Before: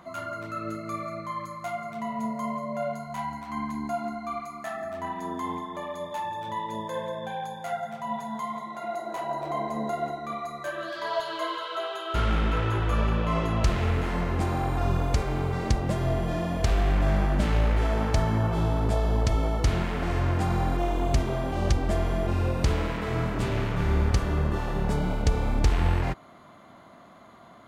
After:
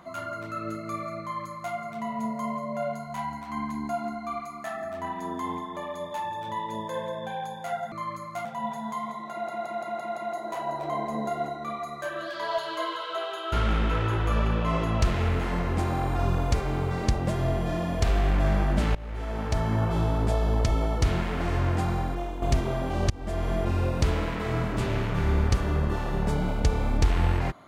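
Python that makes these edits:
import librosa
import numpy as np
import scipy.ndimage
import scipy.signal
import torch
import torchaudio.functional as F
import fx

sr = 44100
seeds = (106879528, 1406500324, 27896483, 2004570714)

y = fx.edit(x, sr, fx.duplicate(start_s=1.21, length_s=0.53, to_s=7.92),
    fx.stutter(start_s=8.79, slice_s=0.17, count=6),
    fx.fade_in_from(start_s=17.57, length_s=0.86, floor_db=-21.0),
    fx.fade_out_to(start_s=20.37, length_s=0.67, floor_db=-9.5),
    fx.fade_in_from(start_s=21.72, length_s=0.42, floor_db=-21.5), tone=tone)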